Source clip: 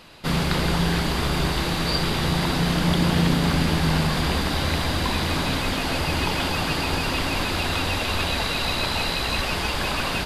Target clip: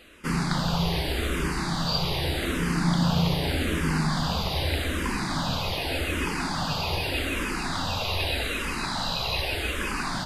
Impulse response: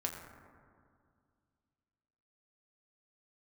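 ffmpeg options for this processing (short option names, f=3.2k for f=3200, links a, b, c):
-filter_complex "[0:a]asplit=2[a][b];[b]afreqshift=-0.83[c];[a][c]amix=inputs=2:normalize=1,volume=-1dB"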